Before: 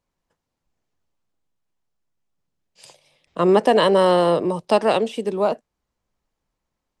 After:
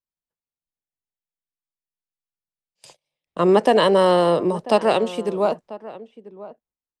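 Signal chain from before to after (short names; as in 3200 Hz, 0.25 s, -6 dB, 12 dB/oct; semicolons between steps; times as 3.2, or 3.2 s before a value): gate -47 dBFS, range -23 dB; outdoor echo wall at 170 m, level -17 dB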